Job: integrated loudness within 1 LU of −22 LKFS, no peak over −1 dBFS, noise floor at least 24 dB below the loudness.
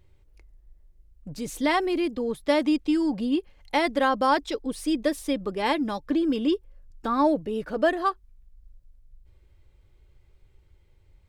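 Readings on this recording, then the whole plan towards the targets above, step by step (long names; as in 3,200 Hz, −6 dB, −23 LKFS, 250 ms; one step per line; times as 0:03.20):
integrated loudness −26.0 LKFS; sample peak −9.0 dBFS; target loudness −22.0 LKFS
→ level +4 dB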